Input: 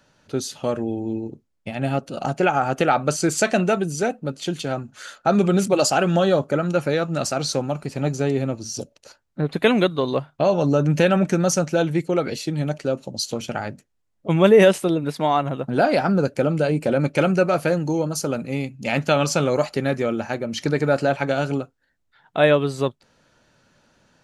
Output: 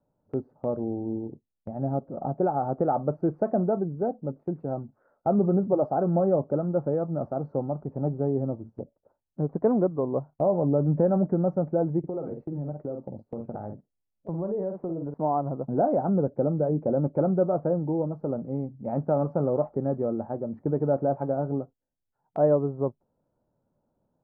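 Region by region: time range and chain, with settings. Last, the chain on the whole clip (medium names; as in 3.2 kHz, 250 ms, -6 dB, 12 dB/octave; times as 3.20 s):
11.99–15.14 s: doubling 48 ms -8 dB + compression 4:1, threshold -24 dBFS
whole clip: inverse Chebyshev low-pass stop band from 3 kHz, stop band 60 dB; gate -38 dBFS, range -8 dB; trim -4.5 dB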